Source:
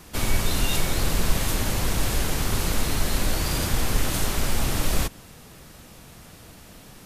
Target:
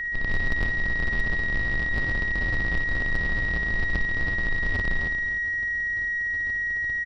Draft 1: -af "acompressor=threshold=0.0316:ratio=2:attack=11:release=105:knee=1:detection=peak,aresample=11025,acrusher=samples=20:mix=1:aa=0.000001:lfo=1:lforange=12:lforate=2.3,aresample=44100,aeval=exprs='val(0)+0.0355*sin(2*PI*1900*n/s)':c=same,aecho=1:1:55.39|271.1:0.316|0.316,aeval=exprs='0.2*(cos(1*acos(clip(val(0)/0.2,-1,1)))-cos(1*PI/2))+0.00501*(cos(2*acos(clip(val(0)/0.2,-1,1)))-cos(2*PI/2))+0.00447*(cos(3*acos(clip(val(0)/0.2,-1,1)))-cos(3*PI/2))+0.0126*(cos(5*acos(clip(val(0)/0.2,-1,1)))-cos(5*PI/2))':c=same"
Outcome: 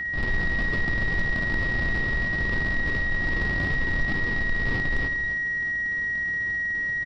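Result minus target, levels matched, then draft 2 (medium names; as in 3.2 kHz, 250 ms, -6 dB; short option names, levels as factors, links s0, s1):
decimation with a swept rate: distortion -5 dB
-af "acompressor=threshold=0.0316:ratio=2:attack=11:release=105:knee=1:detection=peak,aresample=11025,acrusher=samples=74:mix=1:aa=0.000001:lfo=1:lforange=44.4:lforate=2.3,aresample=44100,aeval=exprs='val(0)+0.0355*sin(2*PI*1900*n/s)':c=same,aecho=1:1:55.39|271.1:0.316|0.316,aeval=exprs='0.2*(cos(1*acos(clip(val(0)/0.2,-1,1)))-cos(1*PI/2))+0.00501*(cos(2*acos(clip(val(0)/0.2,-1,1)))-cos(2*PI/2))+0.00447*(cos(3*acos(clip(val(0)/0.2,-1,1)))-cos(3*PI/2))+0.0126*(cos(5*acos(clip(val(0)/0.2,-1,1)))-cos(5*PI/2))':c=same"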